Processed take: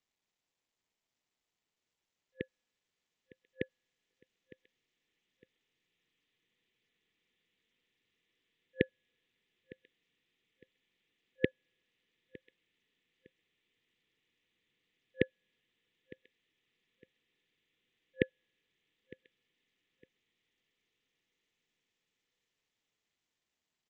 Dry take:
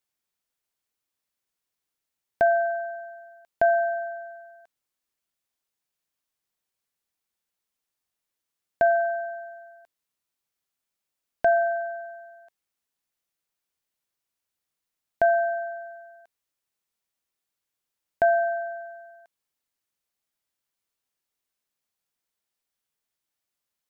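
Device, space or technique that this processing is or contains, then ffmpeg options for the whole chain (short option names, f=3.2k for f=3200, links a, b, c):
Bluetooth headset: -filter_complex "[0:a]asplit=3[a][b][c];[a]afade=t=out:st=4.11:d=0.02[d];[b]equalizer=f=1k:t=o:w=1.2:g=-5,afade=t=in:st=4.11:d=0.02,afade=t=out:st=4.52:d=0.02[e];[c]afade=t=in:st=4.52:d=0.02[f];[d][e][f]amix=inputs=3:normalize=0,aecho=1:1:908|1816:0.0794|0.023,afftfilt=real='re*(1-between(b*sr/4096,520,1700))':imag='im*(1-between(b*sr/4096,520,1700))':win_size=4096:overlap=0.75,highpass=110,dynaudnorm=f=310:g=31:m=12dB,aresample=8000,aresample=44100" -ar 16000 -c:a sbc -b:a 64k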